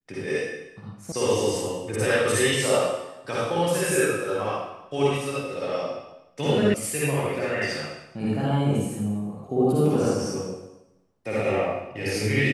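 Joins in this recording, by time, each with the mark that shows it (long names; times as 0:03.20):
0:01.12: cut off before it has died away
0:06.74: cut off before it has died away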